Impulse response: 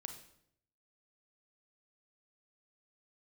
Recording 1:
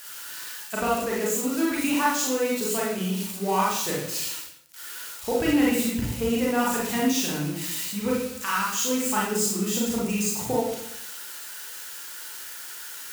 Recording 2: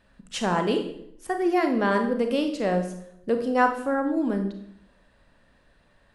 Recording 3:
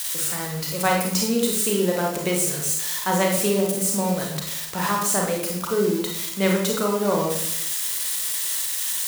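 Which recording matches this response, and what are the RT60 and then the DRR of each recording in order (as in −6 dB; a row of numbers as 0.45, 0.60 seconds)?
2; 0.70, 0.70, 0.70 seconds; −5.0, 5.5, −0.5 decibels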